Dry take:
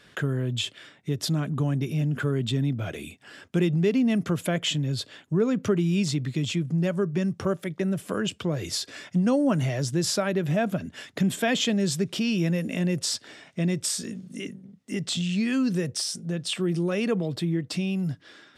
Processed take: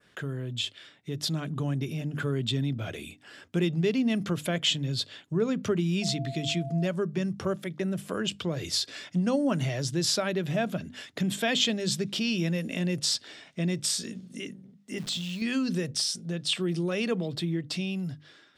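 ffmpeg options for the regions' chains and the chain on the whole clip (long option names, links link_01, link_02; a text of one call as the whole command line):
ffmpeg -i in.wav -filter_complex "[0:a]asettb=1/sr,asplit=3[link_01][link_02][link_03];[link_01]atrim=end=6.024[link_04];[link_02]atrim=start=6.02:end=6.86,asetpts=PTS-STARTPTS,afade=type=in:duration=0.004:curve=qsin,afade=type=out:start_time=0.836:duration=0.004:curve=qsin,aeval=exprs='val(0)+0.0178*sin(2*PI*680*n/s)':channel_layout=same,bandreject=frequency=940:width=12[link_05];[link_03]atrim=start=6.856[link_06];[link_04][link_05]acrossfade=duration=0.004:curve1=hsin:curve2=qsin[link_07];[link_07][link_06]acrossfade=duration=0.004:curve1=qsin:curve2=hsin,asettb=1/sr,asplit=3[link_08][link_09][link_10];[link_08]atrim=end=14.984[link_11];[link_09]atrim=start=14.98:end=15.42,asetpts=PTS-STARTPTS,afade=type=in:duration=0.004:curve=qsin,afade=type=out:start_time=0.436:duration=0.004:curve=qsin,aeval=exprs='val(0)+0.5*0.00708*sgn(val(0))':channel_layout=same,acrusher=bits=8:dc=4:mix=0:aa=0.000001,acompressor=threshold=-29dB:ratio=6:attack=3.2:release=140:knee=1:detection=peak[link_12];[link_10]atrim=start=15.416[link_13];[link_11][link_12]acrossfade=duration=0.004:curve1=hsin:curve2=qsin[link_14];[link_14][link_13]acrossfade=duration=0.004:curve1=qsin:curve2=hsin,bandreject=frequency=50:width_type=h:width=6,bandreject=frequency=100:width_type=h:width=6,bandreject=frequency=150:width_type=h:width=6,bandreject=frequency=200:width_type=h:width=6,bandreject=frequency=250:width_type=h:width=6,bandreject=frequency=300:width_type=h:width=6,adynamicequalizer=threshold=0.00631:dfrequency=3900:dqfactor=1.1:tfrequency=3900:tqfactor=1.1:attack=5:release=100:ratio=0.375:range=3.5:mode=boostabove:tftype=bell,dynaudnorm=framelen=470:gausssize=5:maxgain=4dB,volume=-7dB" out.wav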